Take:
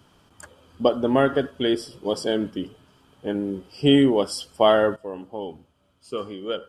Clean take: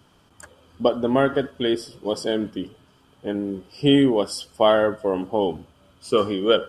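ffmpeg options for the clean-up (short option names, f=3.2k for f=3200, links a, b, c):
-af "asetnsamples=n=441:p=0,asendcmd='4.96 volume volume 10.5dB',volume=0dB"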